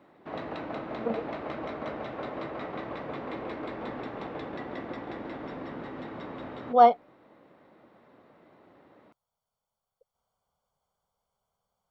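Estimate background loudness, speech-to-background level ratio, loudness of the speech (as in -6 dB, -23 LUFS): -38.0 LUFS, 15.0 dB, -23.0 LUFS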